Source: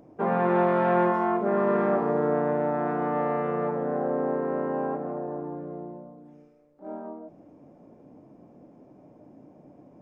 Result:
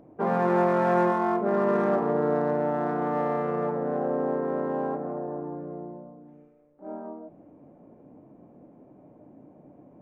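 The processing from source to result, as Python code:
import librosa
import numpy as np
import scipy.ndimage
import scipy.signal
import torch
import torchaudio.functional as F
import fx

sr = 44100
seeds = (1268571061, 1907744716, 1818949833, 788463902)

y = fx.wiener(x, sr, points=9)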